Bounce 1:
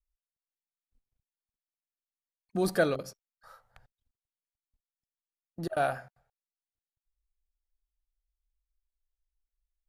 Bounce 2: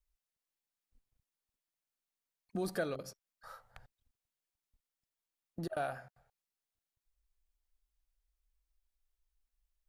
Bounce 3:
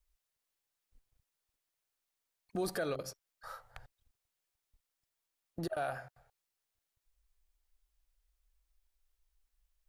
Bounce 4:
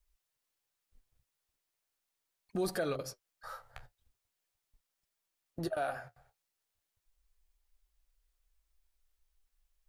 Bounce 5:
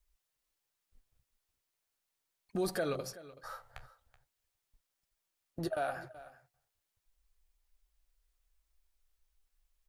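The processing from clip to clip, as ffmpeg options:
-af "acompressor=threshold=-45dB:ratio=2,volume=2.5dB"
-af "equalizer=f=210:w=2.1:g=-7.5,alimiter=level_in=7dB:limit=-24dB:level=0:latency=1:release=63,volume=-7dB,volume=4.5dB"
-af "flanger=delay=4.9:depth=9.6:regen=-44:speed=0.39:shape=sinusoidal,volume=5dB"
-af "aecho=1:1:378:0.133"

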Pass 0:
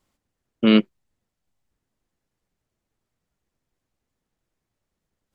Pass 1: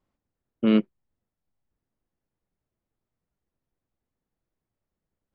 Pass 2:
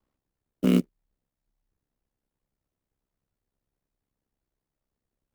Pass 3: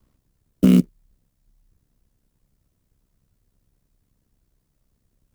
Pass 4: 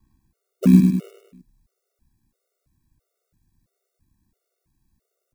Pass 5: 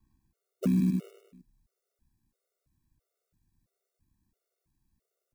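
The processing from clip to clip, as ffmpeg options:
-af "lowpass=f=1.3k:p=1,volume=-4dB"
-filter_complex "[0:a]aeval=exprs='val(0)*sin(2*PI*33*n/s)':c=same,acrusher=bits=6:mode=log:mix=0:aa=0.000001,acrossover=split=340|3000[a][b][c];[b]acompressor=threshold=-31dB:ratio=6[d];[a][d][c]amix=inputs=3:normalize=0,volume=2.5dB"
-af "bass=f=250:g=10,treble=f=4k:g=5,bandreject=f=810:w=12,alimiter=limit=-14dB:level=0:latency=1:release=85,volume=9dB"
-af "bandreject=f=3.1k:w=7.2,aecho=1:1:102|204|306|408|510|612:0.562|0.281|0.141|0.0703|0.0351|0.0176,afftfilt=real='re*gt(sin(2*PI*1.5*pts/sr)*(1-2*mod(floor(b*sr/1024/380),2)),0)':imag='im*gt(sin(2*PI*1.5*pts/sr)*(1-2*mod(floor(b*sr/1024/380),2)),0)':win_size=1024:overlap=0.75,volume=1dB"
-af "alimiter=limit=-11.5dB:level=0:latency=1:release=27,volume=-7dB"

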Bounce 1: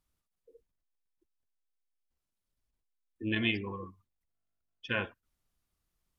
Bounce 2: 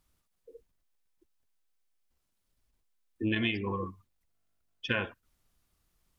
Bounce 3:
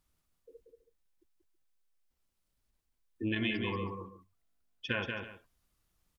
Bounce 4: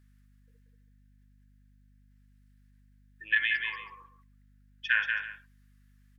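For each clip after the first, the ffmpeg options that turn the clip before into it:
-af "acompressor=threshold=-34dB:ratio=6,volume=7.5dB"
-af "aecho=1:1:184|325:0.562|0.158,volume=-3.5dB"
-af "highpass=f=1.7k:t=q:w=6.5,aeval=exprs='val(0)+0.001*(sin(2*PI*50*n/s)+sin(2*PI*2*50*n/s)/2+sin(2*PI*3*50*n/s)/3+sin(2*PI*4*50*n/s)/4+sin(2*PI*5*50*n/s)/5)':c=same"

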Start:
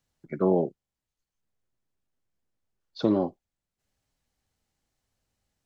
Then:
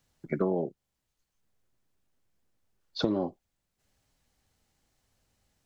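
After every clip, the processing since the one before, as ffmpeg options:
-af "acompressor=threshold=-31dB:ratio=6,volume=6dB"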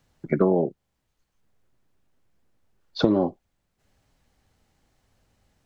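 -af "highshelf=f=3.4k:g=-8.5,volume=8dB"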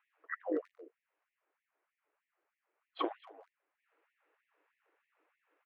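-filter_complex "[0:a]highpass=f=510:t=q:w=0.5412,highpass=f=510:t=q:w=1.307,lowpass=f=2.8k:t=q:w=0.5176,lowpass=f=2.8k:t=q:w=0.7071,lowpass=f=2.8k:t=q:w=1.932,afreqshift=-330,asplit=2[a][b];[b]adelay=230,highpass=300,lowpass=3.4k,asoftclip=type=hard:threshold=-24.5dB,volume=-16dB[c];[a][c]amix=inputs=2:normalize=0,afftfilt=real='re*gte(b*sr/1024,260*pow(1800/260,0.5+0.5*sin(2*PI*3.2*pts/sr)))':imag='im*gte(b*sr/1024,260*pow(1800/260,0.5+0.5*sin(2*PI*3.2*pts/sr)))':win_size=1024:overlap=0.75"

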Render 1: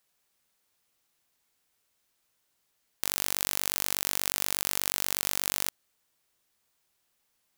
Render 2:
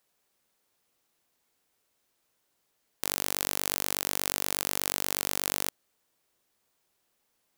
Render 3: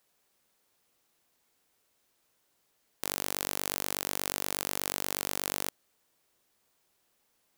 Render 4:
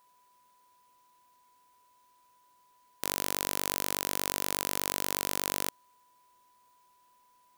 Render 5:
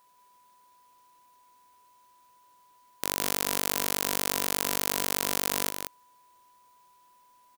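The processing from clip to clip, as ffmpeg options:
-af "equalizer=f=410:t=o:w=2.6:g=6,volume=-1dB"
-af "acontrast=64,volume=-4.5dB"
-af "aeval=exprs='val(0)+0.000562*sin(2*PI*990*n/s)':c=same,volume=1.5dB"
-af "aecho=1:1:182:0.473,volume=2.5dB"

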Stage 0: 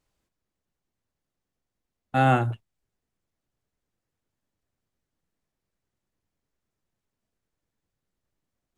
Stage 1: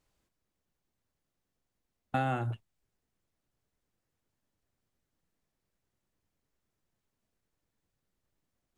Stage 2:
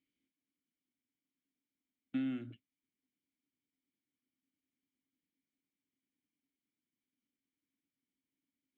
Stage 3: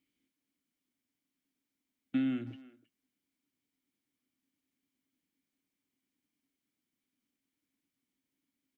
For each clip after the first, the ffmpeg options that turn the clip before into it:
-af "acompressor=threshold=-27dB:ratio=16"
-filter_complex "[0:a]asplit=3[a][b][c];[a]bandpass=f=270:t=q:w=8,volume=0dB[d];[b]bandpass=f=2.29k:t=q:w=8,volume=-6dB[e];[c]bandpass=f=3.01k:t=q:w=8,volume=-9dB[f];[d][e][f]amix=inputs=3:normalize=0,volume=4.5dB"
-filter_complex "[0:a]asplit=2[a][b];[b]adelay=320,highpass=300,lowpass=3.4k,asoftclip=type=hard:threshold=-36.5dB,volume=-17dB[c];[a][c]amix=inputs=2:normalize=0,volume=5dB"

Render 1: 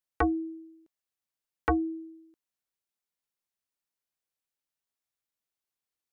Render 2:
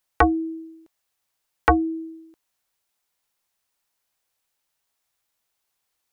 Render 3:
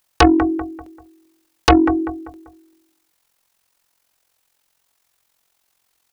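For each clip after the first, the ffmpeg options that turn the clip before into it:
-filter_complex "[0:a]equalizer=f=830:t=o:w=0.77:g=3,asplit=2[a][b];[b]acompressor=threshold=-34dB:ratio=6,volume=-2dB[c];[a][c]amix=inputs=2:normalize=0,equalizer=f=230:t=o:w=2:g=-5,volume=8dB"
-filter_complex "[0:a]tremolo=f=44:d=0.71,asplit=2[a][b];[b]adelay=195,lowpass=f=2k:p=1,volume=-15.5dB,asplit=2[c][d];[d]adelay=195,lowpass=f=2k:p=1,volume=0.4,asplit=2[e][f];[f]adelay=195,lowpass=f=2k:p=1,volume=0.4,asplit=2[g][h];[h]adelay=195,lowpass=f=2k:p=1,volume=0.4[i];[a][c][e][g][i]amix=inputs=5:normalize=0,aeval=exprs='0.562*sin(PI/2*2.82*val(0)/0.562)':c=same"

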